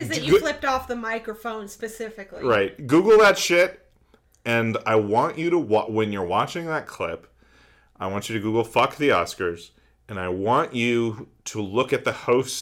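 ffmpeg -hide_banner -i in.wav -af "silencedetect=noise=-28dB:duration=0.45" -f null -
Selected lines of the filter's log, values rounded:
silence_start: 3.69
silence_end: 4.46 | silence_duration: 0.76
silence_start: 7.15
silence_end: 8.01 | silence_duration: 0.86
silence_start: 9.54
silence_end: 10.11 | silence_duration: 0.57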